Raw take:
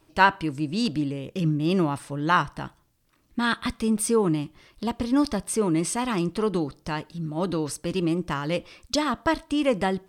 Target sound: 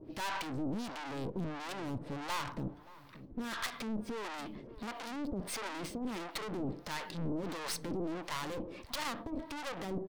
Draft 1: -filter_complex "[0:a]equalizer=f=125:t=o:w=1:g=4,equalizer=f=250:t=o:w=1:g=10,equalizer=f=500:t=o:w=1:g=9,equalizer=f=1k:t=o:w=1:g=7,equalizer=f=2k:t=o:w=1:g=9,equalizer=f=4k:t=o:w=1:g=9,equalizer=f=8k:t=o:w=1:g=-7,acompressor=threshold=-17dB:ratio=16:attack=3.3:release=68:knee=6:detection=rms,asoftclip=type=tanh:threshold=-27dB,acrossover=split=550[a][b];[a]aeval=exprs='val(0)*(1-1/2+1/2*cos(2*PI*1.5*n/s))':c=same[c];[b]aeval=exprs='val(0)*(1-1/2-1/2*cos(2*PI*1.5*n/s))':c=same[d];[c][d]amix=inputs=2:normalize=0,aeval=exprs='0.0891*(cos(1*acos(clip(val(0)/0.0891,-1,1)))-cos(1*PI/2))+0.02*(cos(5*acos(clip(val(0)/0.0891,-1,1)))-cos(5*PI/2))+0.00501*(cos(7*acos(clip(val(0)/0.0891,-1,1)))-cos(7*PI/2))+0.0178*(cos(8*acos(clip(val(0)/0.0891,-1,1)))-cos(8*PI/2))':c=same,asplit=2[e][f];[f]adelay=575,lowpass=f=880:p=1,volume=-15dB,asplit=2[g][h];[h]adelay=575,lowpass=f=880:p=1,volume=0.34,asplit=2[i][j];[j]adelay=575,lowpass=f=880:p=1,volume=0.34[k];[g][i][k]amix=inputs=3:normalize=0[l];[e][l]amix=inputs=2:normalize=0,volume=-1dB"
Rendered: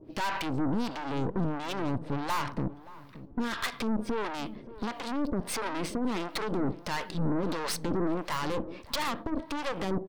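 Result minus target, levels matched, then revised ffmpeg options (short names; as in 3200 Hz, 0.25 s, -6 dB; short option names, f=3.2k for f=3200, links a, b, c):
soft clip: distortion -4 dB
-filter_complex "[0:a]equalizer=f=125:t=o:w=1:g=4,equalizer=f=250:t=o:w=1:g=10,equalizer=f=500:t=o:w=1:g=9,equalizer=f=1k:t=o:w=1:g=7,equalizer=f=2k:t=o:w=1:g=9,equalizer=f=4k:t=o:w=1:g=9,equalizer=f=8k:t=o:w=1:g=-7,acompressor=threshold=-17dB:ratio=16:attack=3.3:release=68:knee=6:detection=rms,asoftclip=type=tanh:threshold=-37dB,acrossover=split=550[a][b];[a]aeval=exprs='val(0)*(1-1/2+1/2*cos(2*PI*1.5*n/s))':c=same[c];[b]aeval=exprs='val(0)*(1-1/2-1/2*cos(2*PI*1.5*n/s))':c=same[d];[c][d]amix=inputs=2:normalize=0,aeval=exprs='0.0891*(cos(1*acos(clip(val(0)/0.0891,-1,1)))-cos(1*PI/2))+0.02*(cos(5*acos(clip(val(0)/0.0891,-1,1)))-cos(5*PI/2))+0.00501*(cos(7*acos(clip(val(0)/0.0891,-1,1)))-cos(7*PI/2))+0.0178*(cos(8*acos(clip(val(0)/0.0891,-1,1)))-cos(8*PI/2))':c=same,asplit=2[e][f];[f]adelay=575,lowpass=f=880:p=1,volume=-15dB,asplit=2[g][h];[h]adelay=575,lowpass=f=880:p=1,volume=0.34,asplit=2[i][j];[j]adelay=575,lowpass=f=880:p=1,volume=0.34[k];[g][i][k]amix=inputs=3:normalize=0[l];[e][l]amix=inputs=2:normalize=0,volume=-1dB"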